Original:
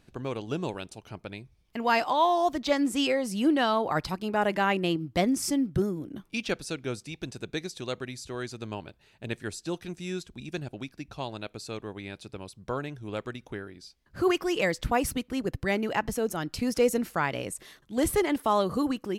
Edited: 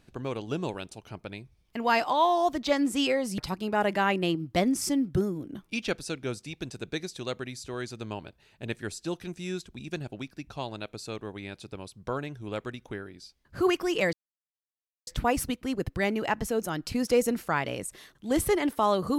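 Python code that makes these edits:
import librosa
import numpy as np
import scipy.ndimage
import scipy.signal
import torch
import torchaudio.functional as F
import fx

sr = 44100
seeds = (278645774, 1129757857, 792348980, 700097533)

y = fx.edit(x, sr, fx.cut(start_s=3.38, length_s=0.61),
    fx.insert_silence(at_s=14.74, length_s=0.94), tone=tone)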